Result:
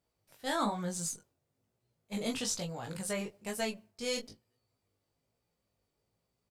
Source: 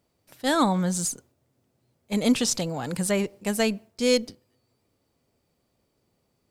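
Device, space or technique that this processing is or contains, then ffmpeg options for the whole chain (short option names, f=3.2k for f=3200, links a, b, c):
double-tracked vocal: -filter_complex "[0:a]asplit=2[a][b];[b]adelay=19,volume=-6.5dB[c];[a][c]amix=inputs=2:normalize=0,flanger=delay=16.5:depth=5.2:speed=1.1,equalizer=f=290:t=o:w=0.92:g=-5,volume=-6.5dB"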